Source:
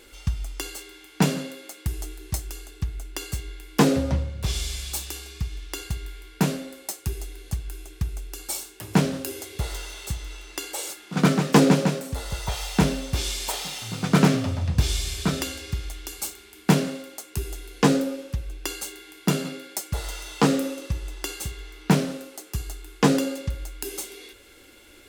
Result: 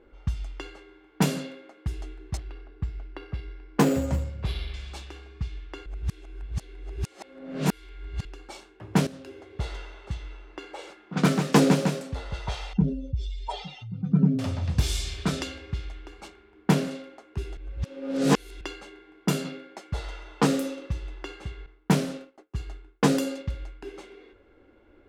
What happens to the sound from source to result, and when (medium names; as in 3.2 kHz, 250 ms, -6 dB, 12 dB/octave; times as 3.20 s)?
2.37–4.74 s: careless resampling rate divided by 6×, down filtered, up hold
5.86–8.25 s: reverse
9.07–9.60 s: fade in, from -13.5 dB
12.73–14.39 s: spectral contrast enhancement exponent 2.3
16.28–16.91 s: treble shelf 4.5 kHz -5.5 dB
17.57–18.61 s: reverse
21.66–23.97 s: expander -36 dBFS
whole clip: level-controlled noise filter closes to 990 Hz, open at -18.5 dBFS; trim -2.5 dB